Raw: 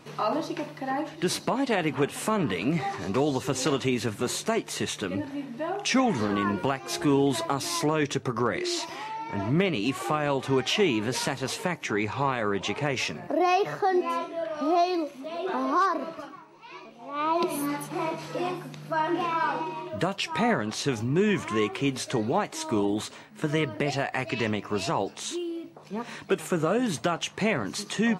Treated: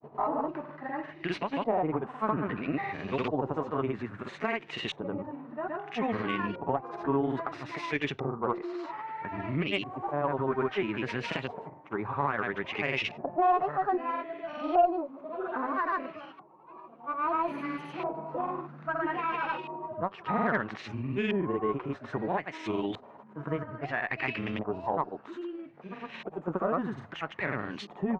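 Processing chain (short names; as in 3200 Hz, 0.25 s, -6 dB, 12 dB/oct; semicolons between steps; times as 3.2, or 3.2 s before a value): grains, grains 20/s, pitch spread up and down by 0 st; LFO low-pass saw up 0.61 Hz 730–3100 Hz; added harmonics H 4 -29 dB, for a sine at -9 dBFS; gain -5 dB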